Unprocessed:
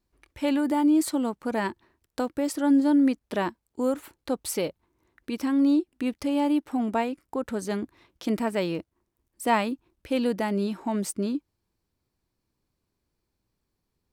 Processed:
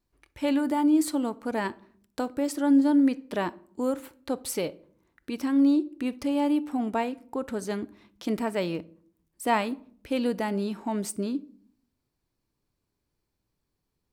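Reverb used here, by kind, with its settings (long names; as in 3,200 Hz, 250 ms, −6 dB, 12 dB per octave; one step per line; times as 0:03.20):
rectangular room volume 720 cubic metres, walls furnished, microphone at 0.35 metres
level −1.5 dB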